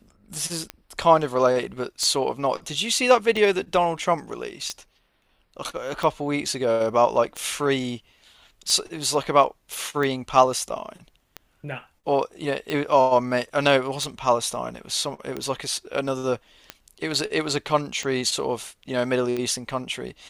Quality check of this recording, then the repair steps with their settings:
tick 45 rpm -15 dBFS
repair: de-click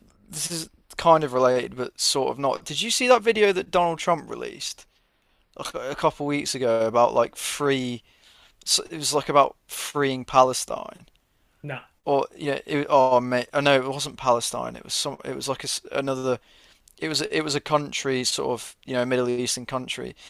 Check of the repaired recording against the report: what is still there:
none

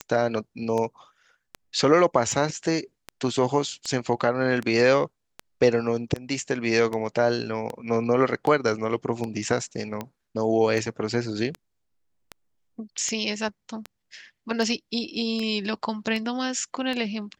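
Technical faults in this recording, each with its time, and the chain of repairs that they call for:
tick 78 rpm -17 dBFS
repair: de-click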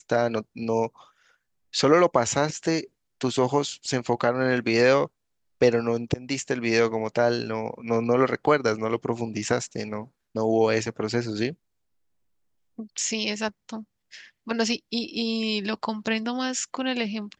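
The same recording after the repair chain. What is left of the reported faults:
none

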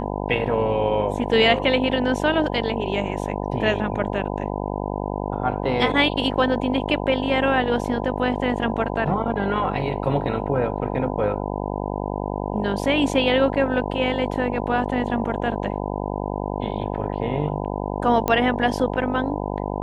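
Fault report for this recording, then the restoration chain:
buzz 50 Hz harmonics 20 -27 dBFS
18.28 pop -8 dBFS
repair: de-click; de-hum 50 Hz, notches 20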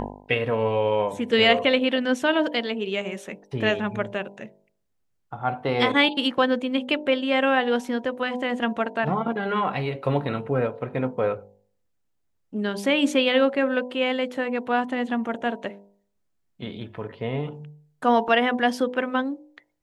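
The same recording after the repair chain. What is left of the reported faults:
none

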